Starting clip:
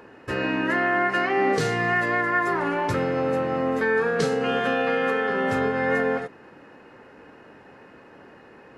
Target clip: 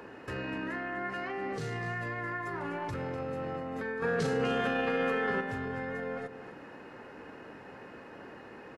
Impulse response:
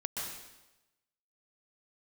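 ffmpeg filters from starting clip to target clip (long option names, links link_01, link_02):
-filter_complex "[0:a]acrossover=split=130[link_01][link_02];[link_02]acompressor=threshold=-33dB:ratio=6[link_03];[link_01][link_03]amix=inputs=2:normalize=0,alimiter=level_in=5dB:limit=-24dB:level=0:latency=1:release=11,volume=-5dB,asettb=1/sr,asplit=3[link_04][link_05][link_06];[link_04]atrim=end=4.024[link_07];[link_05]atrim=start=4.02:end=5.41,asetpts=PTS-STARTPTS,afade=type=in:duration=0.004:curve=qsin,afade=type=out:start_time=1.386:duration=0.004:curve=qsin,acontrast=80[link_08];[link_06]atrim=start=5.406[link_09];[link_07][link_08]acrossfade=duration=0.004:curve1=hsin:curve2=qsin[link_10];[link_10][link_09]acrossfade=duration=0.004:curve1=qsin:curve2=hsin,aecho=1:1:248:0.266"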